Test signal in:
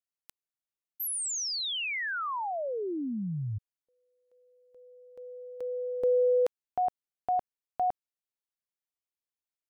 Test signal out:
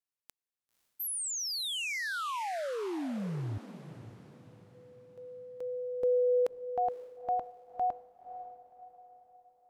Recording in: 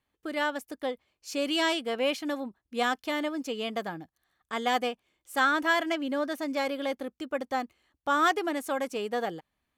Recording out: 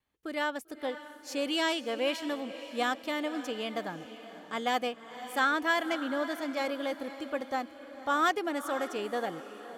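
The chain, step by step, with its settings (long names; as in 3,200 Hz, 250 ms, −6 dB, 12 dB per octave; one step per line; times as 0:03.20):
pitch vibrato 0.42 Hz 7.9 cents
feedback delay with all-pass diffusion 534 ms, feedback 43%, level −12.5 dB
level −2.5 dB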